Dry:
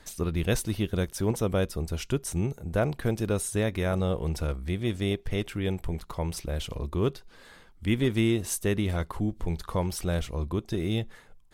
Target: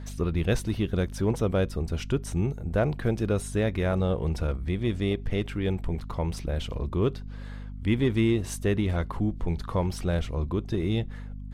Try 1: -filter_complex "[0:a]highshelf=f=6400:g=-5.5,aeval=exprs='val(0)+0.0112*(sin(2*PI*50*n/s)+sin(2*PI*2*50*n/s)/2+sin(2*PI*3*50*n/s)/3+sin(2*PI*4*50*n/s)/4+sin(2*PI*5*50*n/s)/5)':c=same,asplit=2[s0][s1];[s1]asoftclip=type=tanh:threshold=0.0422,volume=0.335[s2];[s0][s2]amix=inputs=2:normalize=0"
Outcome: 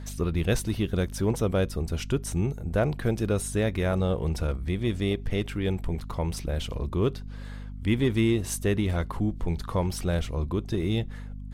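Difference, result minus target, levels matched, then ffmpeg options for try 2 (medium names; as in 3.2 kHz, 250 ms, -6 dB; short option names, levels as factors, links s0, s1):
8 kHz band +5.0 dB
-filter_complex "[0:a]highshelf=f=6400:g=-14,aeval=exprs='val(0)+0.0112*(sin(2*PI*50*n/s)+sin(2*PI*2*50*n/s)/2+sin(2*PI*3*50*n/s)/3+sin(2*PI*4*50*n/s)/4+sin(2*PI*5*50*n/s)/5)':c=same,asplit=2[s0][s1];[s1]asoftclip=type=tanh:threshold=0.0422,volume=0.335[s2];[s0][s2]amix=inputs=2:normalize=0"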